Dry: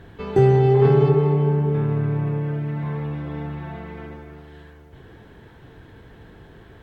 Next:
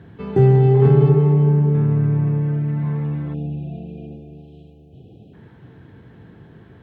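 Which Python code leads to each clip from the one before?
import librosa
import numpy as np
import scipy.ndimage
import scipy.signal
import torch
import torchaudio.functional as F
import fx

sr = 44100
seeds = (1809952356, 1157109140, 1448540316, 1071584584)

y = fx.spec_erase(x, sr, start_s=3.34, length_s=2.0, low_hz=830.0, high_hz=2400.0)
y = scipy.signal.sosfilt(scipy.signal.butter(2, 160.0, 'highpass', fs=sr, output='sos'), y)
y = fx.bass_treble(y, sr, bass_db=14, treble_db=-8)
y = F.gain(torch.from_numpy(y), -3.0).numpy()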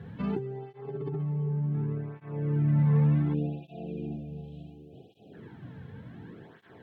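y = fx.over_compress(x, sr, threshold_db=-22.0, ratio=-1.0)
y = fx.flanger_cancel(y, sr, hz=0.68, depth_ms=3.3)
y = F.gain(torch.from_numpy(y), -4.0).numpy()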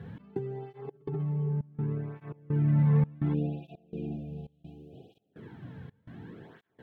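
y = fx.step_gate(x, sr, bpm=168, pattern='xx..xxxx', floor_db=-24.0, edge_ms=4.5)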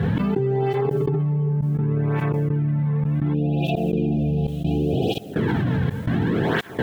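y = fx.env_flatten(x, sr, amount_pct=100)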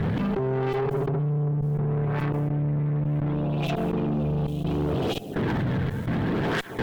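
y = fx.tube_stage(x, sr, drive_db=24.0, bias=0.5)
y = F.gain(torch.from_numpy(y), 2.0).numpy()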